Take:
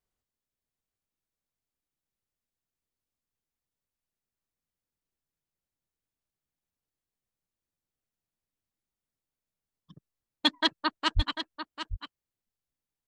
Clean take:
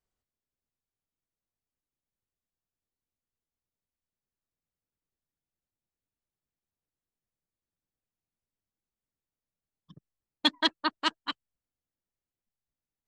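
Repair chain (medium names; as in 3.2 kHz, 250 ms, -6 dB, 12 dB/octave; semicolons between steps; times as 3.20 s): de-plosive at 11.15 s; inverse comb 745 ms -10 dB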